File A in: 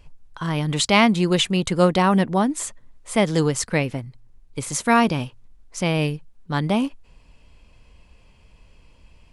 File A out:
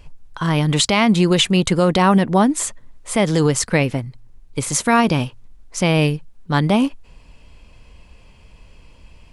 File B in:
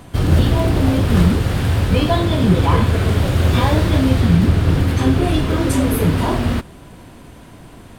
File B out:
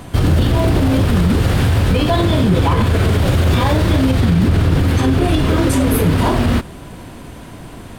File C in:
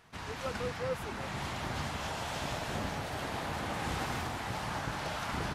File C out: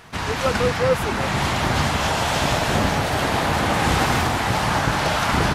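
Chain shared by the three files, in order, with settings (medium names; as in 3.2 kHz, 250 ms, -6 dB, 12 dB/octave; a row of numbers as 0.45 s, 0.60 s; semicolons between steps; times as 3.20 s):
peak limiter -12 dBFS; peak normalisation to -6 dBFS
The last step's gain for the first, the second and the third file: +6.0 dB, +6.0 dB, +16.0 dB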